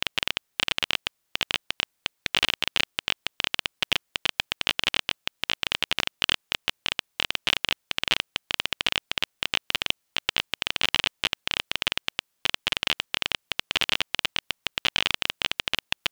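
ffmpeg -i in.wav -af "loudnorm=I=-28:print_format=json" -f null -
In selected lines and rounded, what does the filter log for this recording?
"input_i" : "-26.8",
"input_tp" : "-1.0",
"input_lra" : "0.6",
"input_thresh" : "-36.8",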